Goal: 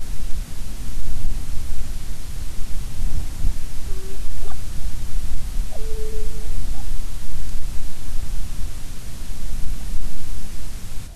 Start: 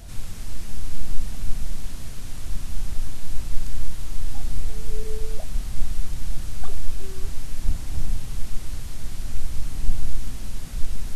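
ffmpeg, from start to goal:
-af "areverse,alimiter=level_in=6.5dB:limit=-1dB:release=50:level=0:latency=1,volume=-4dB"

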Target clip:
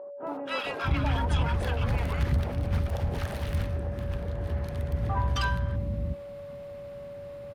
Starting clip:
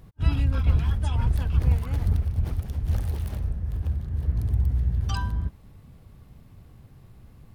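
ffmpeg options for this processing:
-filter_complex "[0:a]acrossover=split=330|1000[a][b][c];[c]adelay=270[d];[a]adelay=650[e];[e][b][d]amix=inputs=3:normalize=0,aeval=exprs='val(0)+0.00355*sin(2*PI*570*n/s)':c=same,asplit=2[f][g];[g]highpass=f=720:p=1,volume=25dB,asoftclip=type=tanh:threshold=-9.5dB[h];[f][h]amix=inputs=2:normalize=0,lowpass=f=1.7k:p=1,volume=-6dB,volume=-4.5dB"

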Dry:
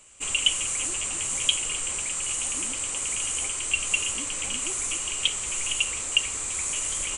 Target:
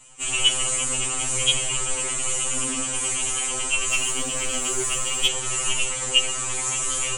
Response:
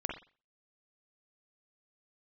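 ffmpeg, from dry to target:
-filter_complex "[1:a]atrim=start_sample=2205,asetrate=24255,aresample=44100[a];[0:a][a]afir=irnorm=-1:irlink=0,asettb=1/sr,asplit=3[b][c][d];[b]atrim=end=3.894[e];[c]atrim=start=3.89:end=5.28,asetpts=PTS-STARTPTS,afade=t=in:d=0.004:c=qsin,afade=t=out:st=1.386:d=0.004:c=qsin,aeval=exprs='0.501*(cos(1*acos(clip(val(0)/0.501,-1,1)))-cos(1*PI/2))+0.0398*(cos(4*acos(clip(val(0)/0.501,-1,1)))-cos(4*PI/2))':c=same[f];[d]atrim=start=5.276[g];[e][f]acrossfade=d=0.004:c1=hsin:c2=qsin[h];[h][g]acrossfade=d=0.004:c1=qsin:c2=hsin,afftfilt=real='re*2.45*eq(mod(b,6),0)':imag='im*2.45*eq(mod(b,6),0)':win_size=2048:overlap=0.75,volume=3.5dB"

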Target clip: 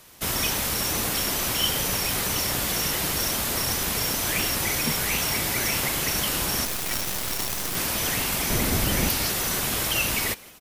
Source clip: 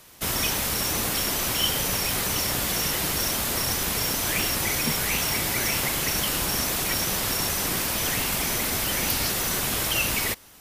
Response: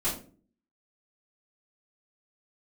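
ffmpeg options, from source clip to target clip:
-filter_complex "[0:a]asettb=1/sr,asplit=3[a][b][c];[a]atrim=end=6.654[d];[b]atrim=start=6.65:end=7.76,asetpts=PTS-STARTPTS,afade=t=in:d=0.004:c=qsin,afade=t=out:st=1.106:d=0.004:c=qsin,acrusher=bits=4:dc=4:mix=0:aa=0.000001[e];[c]atrim=start=7.756[f];[d][e]acrossfade=d=0.004:c1=hsin:c2=qsin[g];[g][f]acrossfade=d=0.004:c1=qsin:c2=hsin,asettb=1/sr,asplit=3[h][i][j];[h]atrim=end=8.504[k];[i]atrim=start=8.5:end=9.09,asetpts=PTS-STARTPTS,afade=t=in:d=0.004:c=qsin,afade=t=out:st=0.586:d=0.004:c=qsin,lowshelf=f=390:g=10[l];[j]atrim=start=9.086[m];[k][l]acrossfade=d=0.004:c1=hsin:c2=qsin[n];[n][m]acrossfade=d=0.004:c1=qsin:c2=hsin,asplit=4[o][p][q][r];[p]adelay=167,afreqshift=150,volume=-22.5dB[s];[q]adelay=334,afreqshift=300,volume=-30.7dB[t];[r]adelay=501,afreqshift=450,volume=-38.9dB[u];[o][s][t][u]amix=inputs=4:normalize=0"

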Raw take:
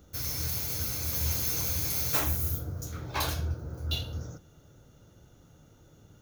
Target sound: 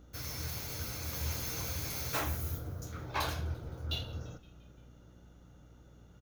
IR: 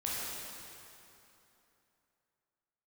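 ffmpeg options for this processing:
-filter_complex "[0:a]lowshelf=f=450:g=-5.5,asplit=6[a][b][c][d][e][f];[b]adelay=172,afreqshift=-89,volume=-22dB[g];[c]adelay=344,afreqshift=-178,volume=-26.4dB[h];[d]adelay=516,afreqshift=-267,volume=-30.9dB[i];[e]adelay=688,afreqshift=-356,volume=-35.3dB[j];[f]adelay=860,afreqshift=-445,volume=-39.7dB[k];[a][g][h][i][j][k]amix=inputs=6:normalize=0,aeval=exprs='val(0)+0.00141*(sin(2*PI*60*n/s)+sin(2*PI*2*60*n/s)/2+sin(2*PI*3*60*n/s)/3+sin(2*PI*4*60*n/s)/4+sin(2*PI*5*60*n/s)/5)':c=same,highshelf=f=4.4k:g=-11"

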